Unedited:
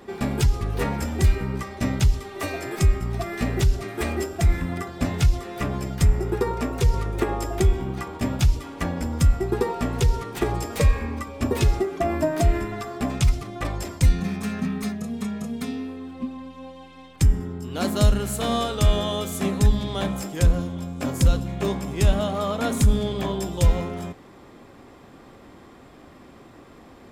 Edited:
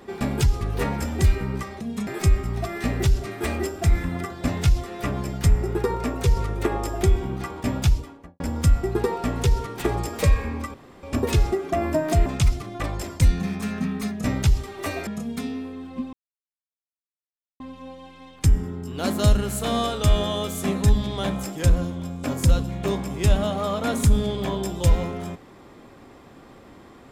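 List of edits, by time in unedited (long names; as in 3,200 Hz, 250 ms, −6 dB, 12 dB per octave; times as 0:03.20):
0:01.81–0:02.64: swap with 0:15.05–0:15.31
0:08.41–0:08.97: fade out and dull
0:11.31: splice in room tone 0.29 s
0:12.54–0:13.07: remove
0:16.37: splice in silence 1.47 s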